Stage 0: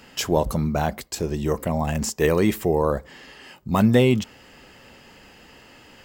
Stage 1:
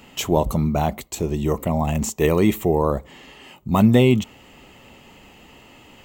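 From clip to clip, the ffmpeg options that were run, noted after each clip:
-af "equalizer=f=500:t=o:w=0.33:g=-4,equalizer=f=1600:t=o:w=0.33:g=-12,equalizer=f=5000:t=o:w=0.33:g=-12,equalizer=f=10000:t=o:w=0.33:g=-5,volume=1.41"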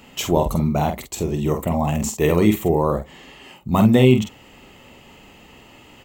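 -filter_complex "[0:a]asplit=2[s0][s1];[s1]adelay=47,volume=0.473[s2];[s0][s2]amix=inputs=2:normalize=0"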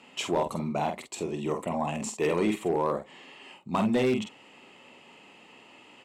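-af "asoftclip=type=tanh:threshold=0.501,highpass=230,equalizer=f=1000:t=q:w=4:g=3,equalizer=f=2500:t=q:w=4:g=4,equalizer=f=6300:t=q:w=4:g=-5,lowpass=f=9800:w=0.5412,lowpass=f=9800:w=1.3066,asoftclip=type=hard:threshold=0.251,volume=0.473"

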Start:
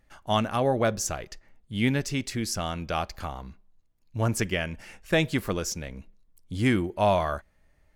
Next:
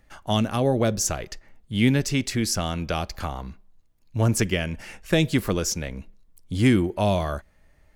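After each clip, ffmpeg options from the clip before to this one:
-filter_complex "[0:a]acrossover=split=490|3000[s0][s1][s2];[s1]acompressor=threshold=0.02:ratio=6[s3];[s0][s3][s2]amix=inputs=3:normalize=0,volume=1.88"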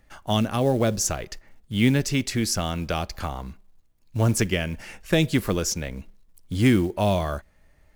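-af "acrusher=bits=7:mode=log:mix=0:aa=0.000001"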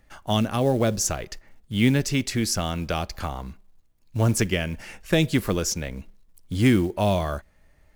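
-af anull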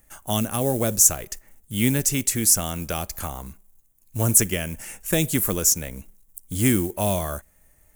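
-af "aexciter=amount=5.1:drive=8.3:freq=6600,volume=0.794"

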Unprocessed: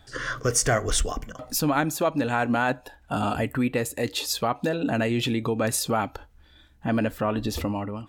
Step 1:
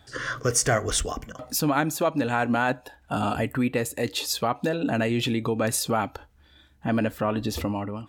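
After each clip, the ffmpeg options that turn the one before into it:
-af "highpass=51"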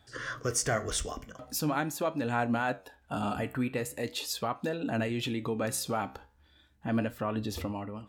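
-af "flanger=delay=8.4:depth=7.2:regen=79:speed=0.42:shape=sinusoidal,volume=0.75"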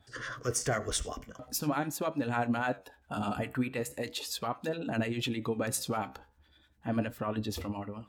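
-filter_complex "[0:a]acrossover=split=970[s0][s1];[s0]aeval=exprs='val(0)*(1-0.7/2+0.7/2*cos(2*PI*10*n/s))':c=same[s2];[s1]aeval=exprs='val(0)*(1-0.7/2-0.7/2*cos(2*PI*10*n/s))':c=same[s3];[s2][s3]amix=inputs=2:normalize=0,volume=1.26"

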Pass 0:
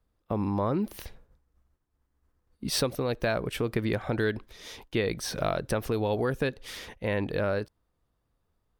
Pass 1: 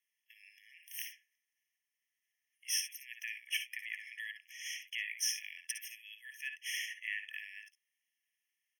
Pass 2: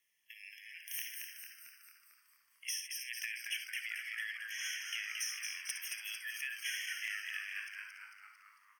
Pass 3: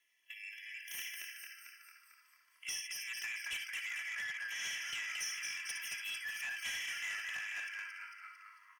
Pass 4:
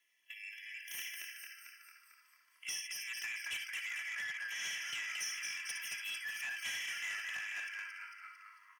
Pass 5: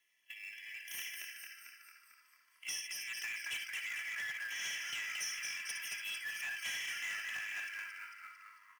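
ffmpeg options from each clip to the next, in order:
-filter_complex "[0:a]acompressor=threshold=0.0282:ratio=6,asplit=2[s0][s1];[s1]aecho=0:1:57|68:0.316|0.224[s2];[s0][s2]amix=inputs=2:normalize=0,afftfilt=real='re*eq(mod(floor(b*sr/1024/1700),2),1)':imag='im*eq(mod(floor(b*sr/1024/1700),2),1)':win_size=1024:overlap=0.75,volume=1.78"
-filter_complex "[0:a]acompressor=threshold=0.00562:ratio=8,volume=53.1,asoftclip=hard,volume=0.0188,asplit=2[s0][s1];[s1]asplit=8[s2][s3][s4][s5][s6][s7][s8][s9];[s2]adelay=224,afreqshift=-110,volume=0.562[s10];[s3]adelay=448,afreqshift=-220,volume=0.327[s11];[s4]adelay=672,afreqshift=-330,volume=0.188[s12];[s5]adelay=896,afreqshift=-440,volume=0.11[s13];[s6]adelay=1120,afreqshift=-550,volume=0.0638[s14];[s7]adelay=1344,afreqshift=-660,volume=0.0367[s15];[s8]adelay=1568,afreqshift=-770,volume=0.0214[s16];[s9]adelay=1792,afreqshift=-880,volume=0.0124[s17];[s10][s11][s12][s13][s14][s15][s16][s17]amix=inputs=8:normalize=0[s18];[s0][s18]amix=inputs=2:normalize=0,volume=2.37"
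-filter_complex "[0:a]aecho=1:1:3:0.81,asplit=2[s0][s1];[s1]highpass=f=720:p=1,volume=3.16,asoftclip=type=tanh:threshold=0.0708[s2];[s0][s2]amix=inputs=2:normalize=0,lowpass=f=3200:p=1,volume=0.501,acrossover=split=460|4400[s3][s4][s5];[s4]asoftclip=type=tanh:threshold=0.0168[s6];[s3][s6][s5]amix=inputs=3:normalize=0,volume=0.841"
-af "highpass=71"
-af "acrusher=bits=4:mode=log:mix=0:aa=0.000001"

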